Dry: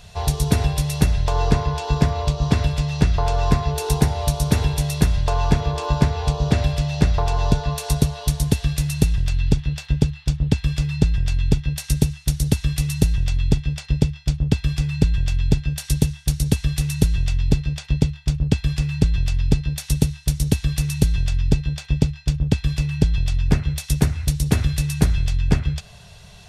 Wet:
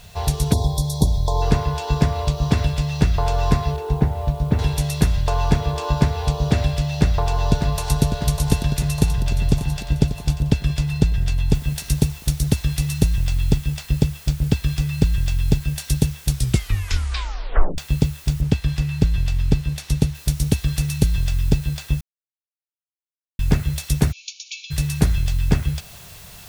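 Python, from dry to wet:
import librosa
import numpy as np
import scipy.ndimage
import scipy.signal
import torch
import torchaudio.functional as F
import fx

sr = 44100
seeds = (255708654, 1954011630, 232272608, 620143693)

y = fx.spec_erase(x, sr, start_s=0.53, length_s=0.89, low_hz=1100.0, high_hz=3300.0)
y = fx.spacing_loss(y, sr, db_at_10k=37, at=(3.76, 4.59))
y = fx.echo_throw(y, sr, start_s=6.93, length_s=1.09, ms=600, feedback_pct=70, wet_db=-7.0)
y = fx.echo_throw(y, sr, start_s=8.67, length_s=1.16, ms=590, feedback_pct=40, wet_db=-12.0)
y = fx.noise_floor_step(y, sr, seeds[0], at_s=11.54, before_db=-54, after_db=-44, tilt_db=0.0)
y = fx.high_shelf(y, sr, hz=7600.0, db=-9.5, at=(18.41, 20.15))
y = fx.brickwall_bandpass(y, sr, low_hz=2200.0, high_hz=7100.0, at=(24.11, 24.7), fade=0.02)
y = fx.edit(y, sr, fx.tape_stop(start_s=16.29, length_s=1.49),
    fx.silence(start_s=22.01, length_s=1.38), tone=tone)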